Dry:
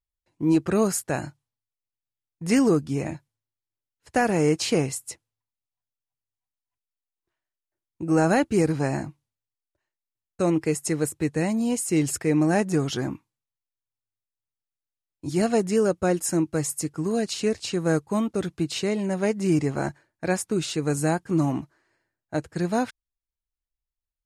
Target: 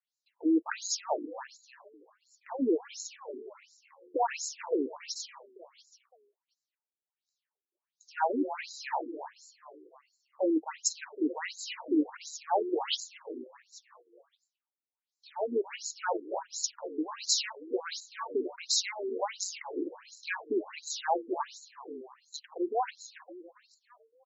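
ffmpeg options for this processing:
-filter_complex "[0:a]acrossover=split=7600[s0][s1];[s1]acompressor=threshold=0.0126:ratio=4:attack=1:release=60[s2];[s0][s2]amix=inputs=2:normalize=0,crystalizer=i=4:c=0,acompressor=threshold=0.0631:ratio=2,aeval=exprs='clip(val(0),-1,0.106)':c=same,equalizer=f=900:w=3.9:g=12.5,asplit=6[s3][s4][s5][s6][s7][s8];[s4]adelay=280,afreqshift=55,volume=0.282[s9];[s5]adelay=560,afreqshift=110,volume=0.141[s10];[s6]adelay=840,afreqshift=165,volume=0.0708[s11];[s7]adelay=1120,afreqshift=220,volume=0.0351[s12];[s8]adelay=1400,afreqshift=275,volume=0.0176[s13];[s3][s9][s10][s11][s12][s13]amix=inputs=6:normalize=0,afftfilt=real='re*between(b*sr/1024,320*pow(5500/320,0.5+0.5*sin(2*PI*1.4*pts/sr))/1.41,320*pow(5500/320,0.5+0.5*sin(2*PI*1.4*pts/sr))*1.41)':imag='im*between(b*sr/1024,320*pow(5500/320,0.5+0.5*sin(2*PI*1.4*pts/sr))/1.41,320*pow(5500/320,0.5+0.5*sin(2*PI*1.4*pts/sr))*1.41)':win_size=1024:overlap=0.75"

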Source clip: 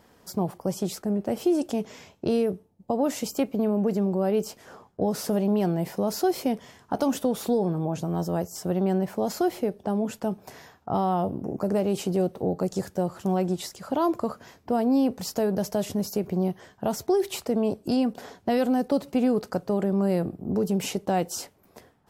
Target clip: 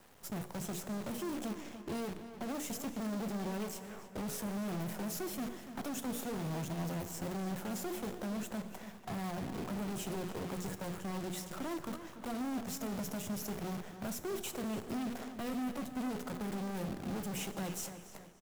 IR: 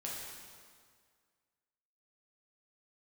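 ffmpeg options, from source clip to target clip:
-filter_complex "[0:a]highpass=f=60:w=0.5412,highpass=f=60:w=1.3066,equalizer=f=4600:w=3.4:g=-11.5,bandreject=f=60:t=h:w=6,bandreject=f=120:t=h:w=6,bandreject=f=180:t=h:w=6,bandreject=f=240:t=h:w=6,bandreject=f=300:t=h:w=6,bandreject=f=360:t=h:w=6,bandreject=f=420:t=h:w=6,bandreject=f=480:t=h:w=6,acrossover=split=290|3000[s0][s1][s2];[s1]acompressor=threshold=0.0224:ratio=5[s3];[s0][s3][s2]amix=inputs=3:normalize=0,acrossover=split=670|2400[s4][s5][s6];[s4]asoftclip=type=hard:threshold=0.0531[s7];[s7][s5][s6]amix=inputs=3:normalize=0,atempo=1.2,acrusher=bits=7:dc=4:mix=0:aa=0.000001,asoftclip=type=tanh:threshold=0.0158,asplit=2[s8][s9];[s9]adelay=290,lowpass=f=3400:p=1,volume=0.299,asplit=2[s10][s11];[s11]adelay=290,lowpass=f=3400:p=1,volume=0.44,asplit=2[s12][s13];[s13]adelay=290,lowpass=f=3400:p=1,volume=0.44,asplit=2[s14][s15];[s15]adelay=290,lowpass=f=3400:p=1,volume=0.44,asplit=2[s16][s17];[s17]adelay=290,lowpass=f=3400:p=1,volume=0.44[s18];[s8][s10][s12][s14][s16][s18]amix=inputs=6:normalize=0,asplit=2[s19][s20];[1:a]atrim=start_sample=2205[s21];[s20][s21]afir=irnorm=-1:irlink=0,volume=0.299[s22];[s19][s22]amix=inputs=2:normalize=0,volume=0.841"

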